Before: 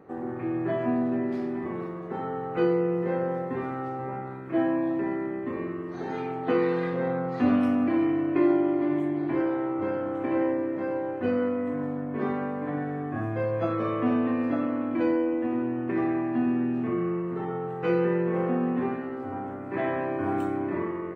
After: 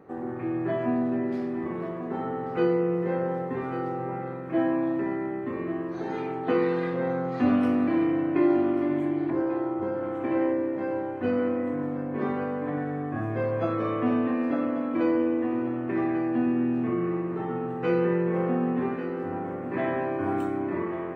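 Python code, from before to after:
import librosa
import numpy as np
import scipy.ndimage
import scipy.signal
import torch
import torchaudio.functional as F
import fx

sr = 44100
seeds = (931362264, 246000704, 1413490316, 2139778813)

p1 = fx.peak_eq(x, sr, hz=2600.0, db=-11.5, octaves=1.1, at=(9.3, 10.03))
y = p1 + fx.echo_single(p1, sr, ms=1142, db=-12.0, dry=0)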